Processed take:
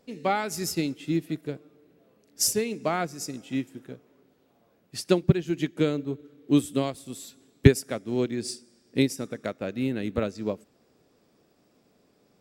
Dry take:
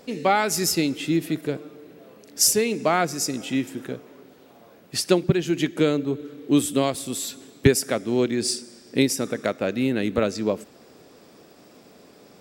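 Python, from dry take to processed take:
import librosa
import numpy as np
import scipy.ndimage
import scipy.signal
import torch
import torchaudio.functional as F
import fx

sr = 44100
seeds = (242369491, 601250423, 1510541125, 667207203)

y = fx.low_shelf(x, sr, hz=170.0, db=8.0)
y = fx.upward_expand(y, sr, threshold_db=-36.0, expansion=1.5)
y = F.gain(torch.from_numpy(y), -1.5).numpy()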